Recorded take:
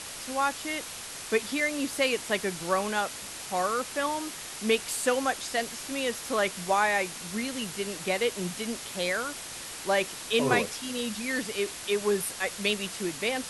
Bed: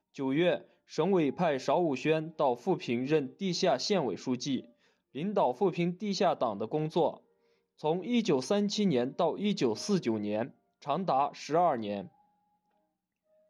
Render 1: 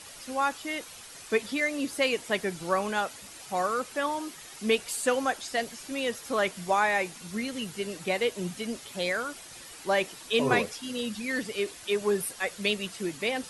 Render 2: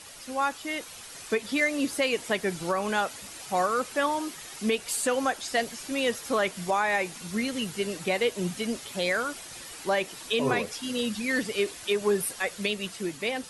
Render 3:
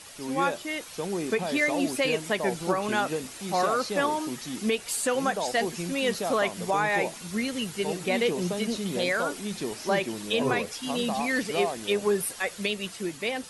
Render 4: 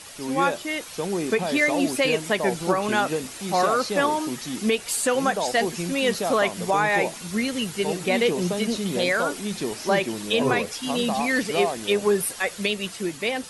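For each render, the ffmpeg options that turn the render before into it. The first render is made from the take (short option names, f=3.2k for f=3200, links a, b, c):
-af "afftdn=nr=9:nf=-40"
-af "dynaudnorm=f=270:g=7:m=3.5dB,alimiter=limit=-15.5dB:level=0:latency=1:release=194"
-filter_complex "[1:a]volume=-4dB[a];[0:a][a]amix=inputs=2:normalize=0"
-af "volume=4dB"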